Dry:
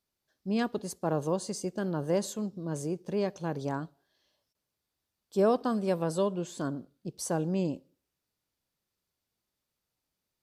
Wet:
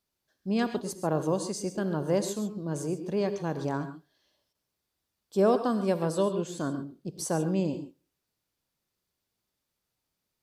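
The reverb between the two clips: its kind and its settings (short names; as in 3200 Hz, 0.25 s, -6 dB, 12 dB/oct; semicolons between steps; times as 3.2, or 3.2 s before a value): non-linear reverb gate 0.16 s rising, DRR 9.5 dB; gain +1.5 dB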